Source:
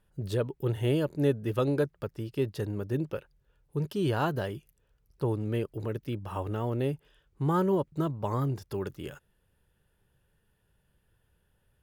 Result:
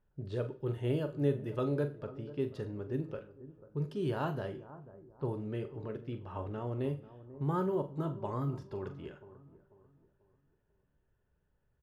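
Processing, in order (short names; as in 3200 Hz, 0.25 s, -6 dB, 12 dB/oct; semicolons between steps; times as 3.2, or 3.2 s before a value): high shelf 3100 Hz -7.5 dB; doubler 42 ms -11.5 dB; on a send: analogue delay 0.491 s, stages 4096, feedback 37%, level -16 dB; on the sum: two-slope reverb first 0.41 s, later 1.5 s, from -25 dB, DRR 9 dB; low-pass opened by the level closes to 2100 Hz, open at -23.5 dBFS; gain -6.5 dB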